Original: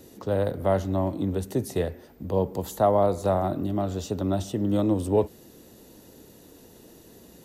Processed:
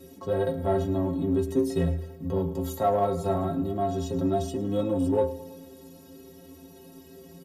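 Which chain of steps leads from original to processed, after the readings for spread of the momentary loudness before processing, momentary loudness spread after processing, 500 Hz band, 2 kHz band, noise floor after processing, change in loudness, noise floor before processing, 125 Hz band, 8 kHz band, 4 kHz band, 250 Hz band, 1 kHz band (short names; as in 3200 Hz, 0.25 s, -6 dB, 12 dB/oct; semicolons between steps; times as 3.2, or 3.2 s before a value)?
7 LU, 6 LU, -1.5 dB, -2.5 dB, -50 dBFS, -1.0 dB, -52 dBFS, -1.5 dB, -3.5 dB, -2.5 dB, 0.0 dB, -1.0 dB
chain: bell 210 Hz +5.5 dB 2.5 oct; metallic resonator 80 Hz, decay 0.44 s, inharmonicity 0.03; feedback echo 0.108 s, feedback 58%, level -19 dB; in parallel at -6 dB: soft clip -32 dBFS, distortion -11 dB; on the sum: harmonic-percussive split harmonic +6 dB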